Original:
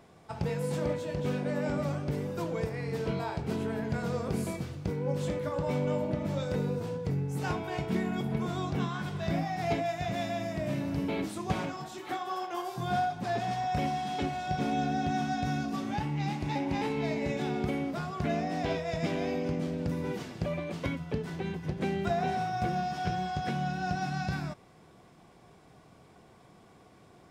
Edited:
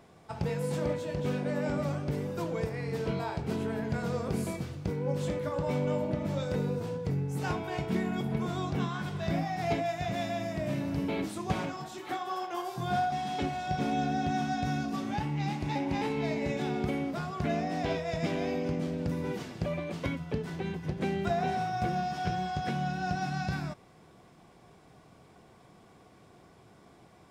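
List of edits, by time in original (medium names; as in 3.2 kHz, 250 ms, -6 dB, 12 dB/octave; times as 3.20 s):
13.12–13.92 s: delete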